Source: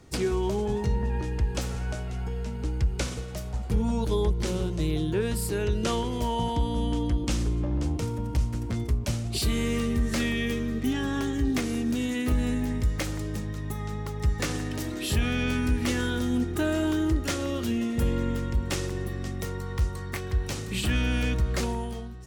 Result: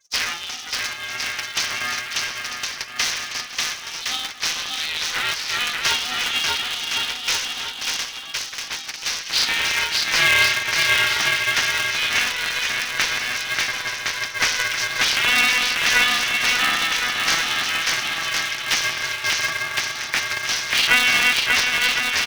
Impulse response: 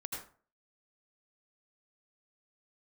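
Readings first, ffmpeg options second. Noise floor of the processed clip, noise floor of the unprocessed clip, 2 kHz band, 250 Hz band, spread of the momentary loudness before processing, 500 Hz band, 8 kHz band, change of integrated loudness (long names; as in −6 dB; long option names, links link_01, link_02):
−34 dBFS, −34 dBFS, +18.5 dB, −14.0 dB, 7 LU, −6.0 dB, +13.5 dB, +8.5 dB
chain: -filter_complex "[0:a]tremolo=f=160:d=0.462,acontrast=46,asplit=2[link_01][link_02];[link_02]aecho=0:1:590|1062|1440|1742|1983:0.631|0.398|0.251|0.158|0.1[link_03];[link_01][link_03]amix=inputs=2:normalize=0,flanger=delay=6.4:depth=1.6:regen=65:speed=0.9:shape=triangular,asplit=2[link_04][link_05];[link_05]alimiter=limit=-21.5dB:level=0:latency=1,volume=0dB[link_06];[link_04][link_06]amix=inputs=2:normalize=0,aderivative,afftfilt=real='re*gte(hypot(re,im),0.00178)':imag='im*gte(hypot(re,im),0.00178)':win_size=1024:overlap=0.75,aecho=1:1:6.9:0.48,asplit=2[link_07][link_08];[link_08]highpass=frequency=720:poles=1,volume=17dB,asoftclip=type=tanh:threshold=-13.5dB[link_09];[link_07][link_09]amix=inputs=2:normalize=0,lowpass=frequency=4700:poles=1,volume=-6dB,afftfilt=real='re*between(b*sr/4096,950,6300)':imag='im*between(b*sr/4096,950,6300)':win_size=4096:overlap=0.75,adynamicequalizer=threshold=0.00562:dfrequency=1900:dqfactor=1.4:tfrequency=1900:tqfactor=1.4:attack=5:release=100:ratio=0.375:range=4:mode=boostabove:tftype=bell,aeval=exprs='val(0)*sgn(sin(2*PI*250*n/s))':channel_layout=same,volume=7dB"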